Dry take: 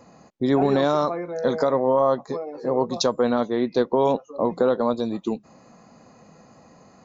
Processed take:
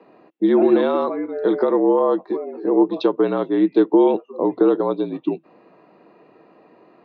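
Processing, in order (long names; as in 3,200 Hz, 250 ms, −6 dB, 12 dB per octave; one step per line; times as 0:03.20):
single-sideband voice off tune −51 Hz 290–3,600 Hz
hollow resonant body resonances 330/2,700 Hz, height 12 dB, ringing for 45 ms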